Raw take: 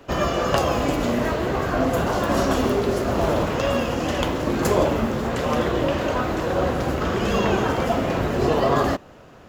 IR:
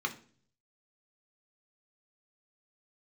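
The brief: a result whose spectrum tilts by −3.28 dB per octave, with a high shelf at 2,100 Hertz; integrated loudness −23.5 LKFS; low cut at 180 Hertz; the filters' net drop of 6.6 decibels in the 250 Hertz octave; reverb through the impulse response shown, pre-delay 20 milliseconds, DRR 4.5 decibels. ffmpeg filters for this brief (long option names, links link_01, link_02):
-filter_complex "[0:a]highpass=180,equalizer=frequency=250:width_type=o:gain=-7.5,highshelf=frequency=2100:gain=6,asplit=2[link_01][link_02];[1:a]atrim=start_sample=2205,adelay=20[link_03];[link_02][link_03]afir=irnorm=-1:irlink=0,volume=-10dB[link_04];[link_01][link_04]amix=inputs=2:normalize=0,volume=-1dB"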